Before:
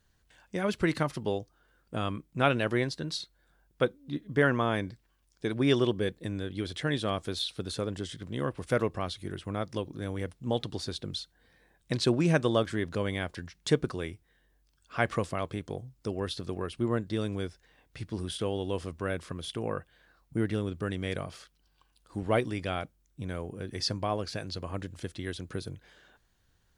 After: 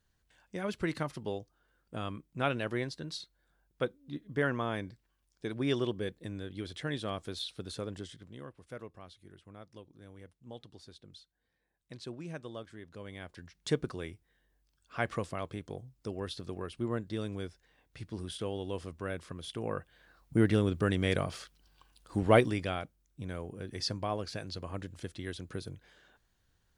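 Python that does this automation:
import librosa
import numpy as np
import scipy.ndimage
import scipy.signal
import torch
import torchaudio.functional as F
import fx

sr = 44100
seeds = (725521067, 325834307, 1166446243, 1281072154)

y = fx.gain(x, sr, db=fx.line((7.99, -6.0), (8.56, -17.5), (12.85, -17.5), (13.68, -5.0), (19.41, -5.0), (20.45, 4.0), (22.4, 4.0), (22.8, -3.5)))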